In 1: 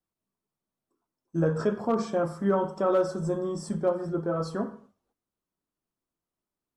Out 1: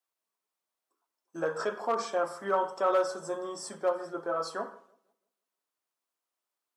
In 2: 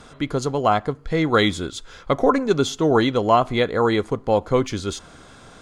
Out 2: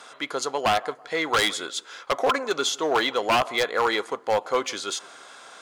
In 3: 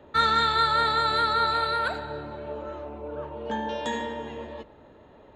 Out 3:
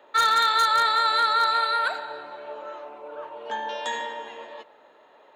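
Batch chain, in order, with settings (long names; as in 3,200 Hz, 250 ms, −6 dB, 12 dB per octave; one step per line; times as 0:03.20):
in parallel at −7.5 dB: hard clipping −17.5 dBFS
on the sum: high-pass filter 680 Hz 12 dB per octave
feedback echo with a low-pass in the loop 164 ms, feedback 37%, low-pass 1,300 Hz, level −22 dB
wave folding −13.5 dBFS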